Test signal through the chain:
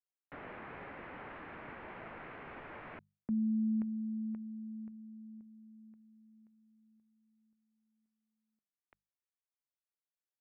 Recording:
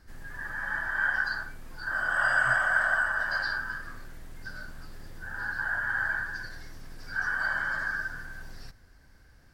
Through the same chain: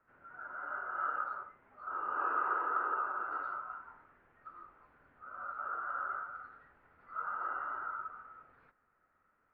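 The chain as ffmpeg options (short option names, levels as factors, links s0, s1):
-af "asubboost=boost=6:cutoff=180,highpass=f=390:t=q:w=0.5412,highpass=f=390:t=q:w=1.307,lowpass=f=2500:t=q:w=0.5176,lowpass=f=2500:t=q:w=0.7071,lowpass=f=2500:t=q:w=1.932,afreqshift=-260,bandreject=f=50:t=h:w=6,bandreject=f=100:t=h:w=6,bandreject=f=150:t=h:w=6,bandreject=f=200:t=h:w=6,volume=0.398"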